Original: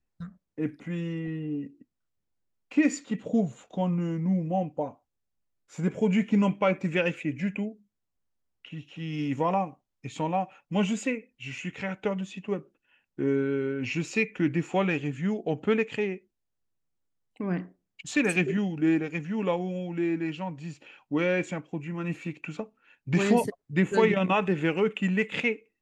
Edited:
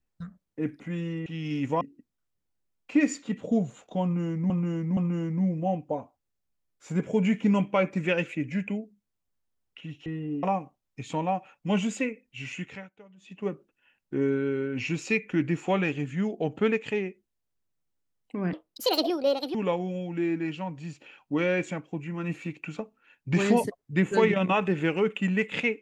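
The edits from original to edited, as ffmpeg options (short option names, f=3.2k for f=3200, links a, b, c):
-filter_complex "[0:a]asplit=11[a][b][c][d][e][f][g][h][i][j][k];[a]atrim=end=1.262[l];[b]atrim=start=8.938:end=9.492[m];[c]atrim=start=1.628:end=4.322[n];[d]atrim=start=3.848:end=4.322[o];[e]atrim=start=3.848:end=8.942[p];[f]atrim=start=1.258:end=1.632[q];[g]atrim=start=9.488:end=11.96,asetpts=PTS-STARTPTS,afade=t=out:st=2.152:d=0.32:silence=0.0707946[r];[h]atrim=start=11.96:end=12.23,asetpts=PTS-STARTPTS,volume=-23dB[s];[i]atrim=start=12.23:end=17.594,asetpts=PTS-STARTPTS,afade=t=in:d=0.32:silence=0.0707946[t];[j]atrim=start=17.59:end=19.35,asetpts=PTS-STARTPTS,asetrate=76293,aresample=44100[u];[k]atrim=start=19.346[v];[l][m]acrossfade=d=0.004:c1=hsin:c2=hsin[w];[w][n]acrossfade=d=0.004:c1=hsin:c2=hsin[x];[x][o]acrossfade=d=0.004:c1=hsin:c2=hsin[y];[y][p]acrossfade=d=0.004:c1=hsin:c2=hsin[z];[z][q]acrossfade=d=0.004:c1=hsin:c2=hsin[aa];[r][s][t]concat=n=3:v=0:a=1[ab];[aa][ab]acrossfade=d=0.004:c1=hsin:c2=hsin[ac];[ac][u]acrossfade=d=0.004:c1=hsin:c2=hsin[ad];[ad][v]acrossfade=d=0.004:c1=hsin:c2=hsin"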